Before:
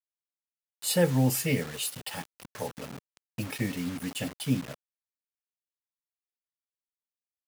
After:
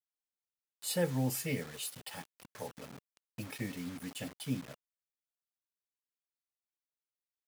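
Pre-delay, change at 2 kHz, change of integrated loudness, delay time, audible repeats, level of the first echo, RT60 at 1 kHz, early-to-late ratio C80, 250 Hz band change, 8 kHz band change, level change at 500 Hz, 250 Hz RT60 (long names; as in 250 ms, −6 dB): no reverb audible, −7.5 dB, −8.0 dB, no echo audible, no echo audible, no echo audible, no reverb audible, no reverb audible, −8.5 dB, −7.5 dB, −8.0 dB, no reverb audible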